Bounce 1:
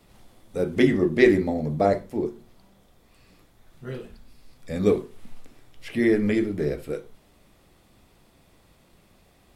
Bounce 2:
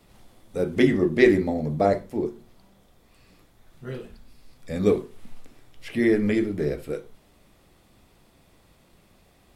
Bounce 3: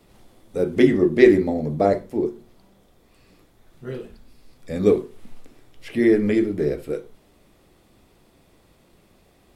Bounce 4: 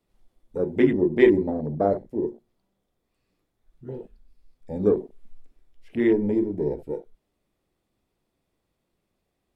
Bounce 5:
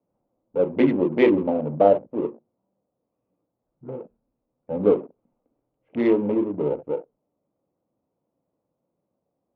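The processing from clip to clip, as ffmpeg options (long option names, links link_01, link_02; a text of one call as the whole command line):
ffmpeg -i in.wav -af anull out.wav
ffmpeg -i in.wav -af "equalizer=frequency=370:width_type=o:width=1.2:gain=4.5" out.wav
ffmpeg -i in.wav -af "afwtdn=0.0355,volume=-3.5dB" out.wav
ffmpeg -i in.wav -af "adynamicsmooth=sensitivity=5.5:basefreq=780,highpass=180,equalizer=frequency=210:width_type=q:width=4:gain=-4,equalizer=frequency=380:width_type=q:width=4:gain=-8,equalizer=frequency=540:width_type=q:width=4:gain=5,equalizer=frequency=930:width_type=q:width=4:gain=3,equalizer=frequency=1800:width_type=q:width=4:gain=-10,lowpass=frequency=3100:width=0.5412,lowpass=frequency=3100:width=1.3066,volume=5dB" out.wav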